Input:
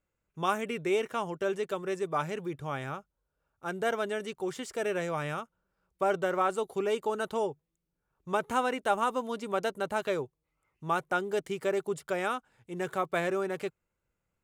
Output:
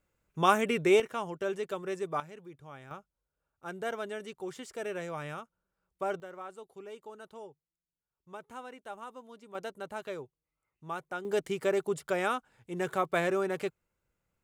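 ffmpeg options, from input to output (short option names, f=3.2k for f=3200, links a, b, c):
-af "asetnsamples=n=441:p=0,asendcmd='1 volume volume -2.5dB;2.2 volume volume -13dB;2.91 volume volume -5.5dB;6.2 volume volume -16dB;9.55 volume volume -8.5dB;11.25 volume volume 1dB',volume=5dB"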